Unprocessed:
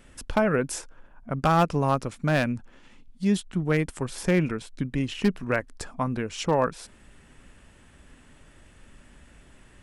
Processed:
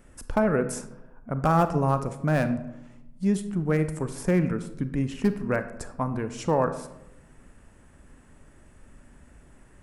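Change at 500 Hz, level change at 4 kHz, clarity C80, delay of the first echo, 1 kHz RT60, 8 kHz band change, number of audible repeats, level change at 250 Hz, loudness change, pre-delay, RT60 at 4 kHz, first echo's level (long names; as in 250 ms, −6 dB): 0.0 dB, −9.0 dB, 14.0 dB, no echo audible, 0.85 s, −2.5 dB, no echo audible, +0.5 dB, 0.0 dB, 31 ms, 0.50 s, no echo audible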